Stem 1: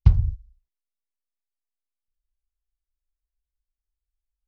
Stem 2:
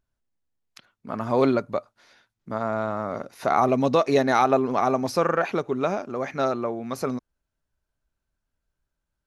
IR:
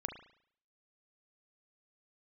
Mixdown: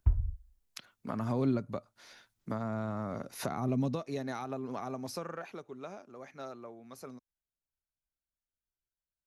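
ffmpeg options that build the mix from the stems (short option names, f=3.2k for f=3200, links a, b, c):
-filter_complex "[0:a]lowpass=f=1.8k:w=0.5412,lowpass=f=1.8k:w=1.3066,aecho=1:1:3.1:0.91,volume=-14dB[a];[1:a]volume=-0.5dB,afade=t=out:st=3.77:d=0.3:silence=0.334965,afade=t=out:st=4.95:d=0.63:silence=0.334965[b];[a][b]amix=inputs=2:normalize=0,highshelf=f=5.4k:g=9,acrossover=split=240[c][d];[d]acompressor=threshold=-36dB:ratio=10[e];[c][e]amix=inputs=2:normalize=0"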